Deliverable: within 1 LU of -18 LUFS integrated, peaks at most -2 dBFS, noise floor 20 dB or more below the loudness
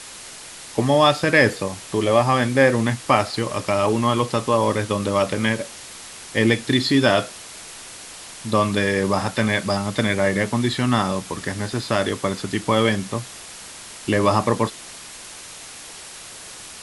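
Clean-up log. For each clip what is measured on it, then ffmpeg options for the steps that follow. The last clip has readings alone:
noise floor -39 dBFS; noise floor target -41 dBFS; loudness -20.5 LUFS; peak level -1.0 dBFS; loudness target -18.0 LUFS
-> -af "afftdn=nr=6:nf=-39"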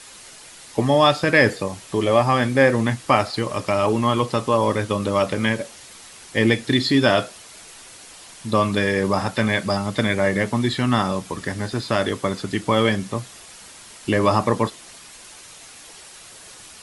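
noise floor -43 dBFS; loudness -20.5 LUFS; peak level -1.5 dBFS; loudness target -18.0 LUFS
-> -af "volume=1.33,alimiter=limit=0.794:level=0:latency=1"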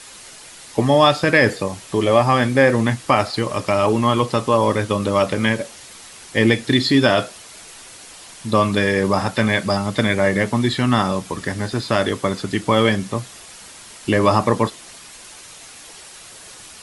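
loudness -18.5 LUFS; peak level -2.0 dBFS; noise floor -41 dBFS

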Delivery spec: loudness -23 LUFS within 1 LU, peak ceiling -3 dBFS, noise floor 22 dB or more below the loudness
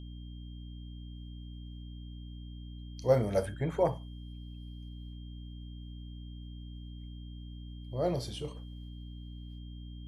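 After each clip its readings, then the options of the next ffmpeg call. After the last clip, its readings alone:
hum 60 Hz; highest harmonic 300 Hz; hum level -42 dBFS; steady tone 3.2 kHz; tone level -59 dBFS; loudness -38.0 LUFS; peak level -13.0 dBFS; loudness target -23.0 LUFS
-> -af "bandreject=f=60:t=h:w=6,bandreject=f=120:t=h:w=6,bandreject=f=180:t=h:w=6,bandreject=f=240:t=h:w=6,bandreject=f=300:t=h:w=6"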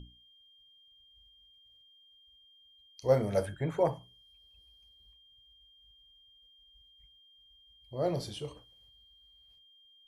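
hum not found; steady tone 3.2 kHz; tone level -59 dBFS
-> -af "bandreject=f=3200:w=30"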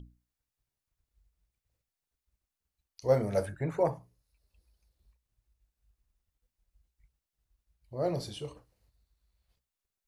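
steady tone not found; loudness -32.0 LUFS; peak level -13.5 dBFS; loudness target -23.0 LUFS
-> -af "volume=2.82"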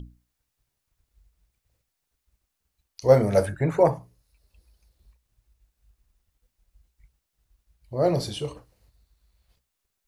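loudness -23.5 LUFS; peak level -4.5 dBFS; noise floor -81 dBFS

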